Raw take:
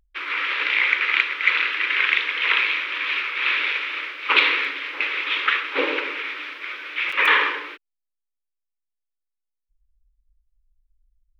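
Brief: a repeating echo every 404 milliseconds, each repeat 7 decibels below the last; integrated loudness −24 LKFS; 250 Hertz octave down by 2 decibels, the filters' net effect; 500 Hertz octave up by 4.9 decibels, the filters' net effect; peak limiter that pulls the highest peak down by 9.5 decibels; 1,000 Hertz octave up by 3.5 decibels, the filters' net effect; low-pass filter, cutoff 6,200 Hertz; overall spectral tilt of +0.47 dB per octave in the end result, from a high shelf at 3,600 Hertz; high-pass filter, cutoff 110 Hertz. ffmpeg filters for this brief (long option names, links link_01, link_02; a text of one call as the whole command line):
ffmpeg -i in.wav -af "highpass=110,lowpass=6200,equalizer=frequency=250:width_type=o:gain=-7,equalizer=frequency=500:width_type=o:gain=6.5,equalizer=frequency=1000:width_type=o:gain=4.5,highshelf=frequency=3600:gain=-8.5,alimiter=limit=-13dB:level=0:latency=1,aecho=1:1:404|808|1212|1616|2020:0.447|0.201|0.0905|0.0407|0.0183,volume=-1dB" out.wav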